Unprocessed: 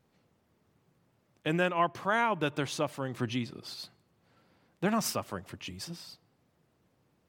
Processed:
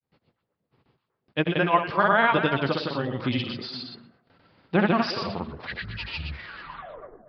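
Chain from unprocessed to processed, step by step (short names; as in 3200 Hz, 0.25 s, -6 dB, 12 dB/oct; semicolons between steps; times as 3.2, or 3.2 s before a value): tape stop at the end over 2.27 s; gate with hold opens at -58 dBFS; de-hum 58.58 Hz, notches 14; grains, pitch spread up and down by 0 st; on a send: delay with a stepping band-pass 0.12 s, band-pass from 3500 Hz, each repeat -1.4 oct, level -4.5 dB; on the sum: downsampling 11025 Hz; gain +8.5 dB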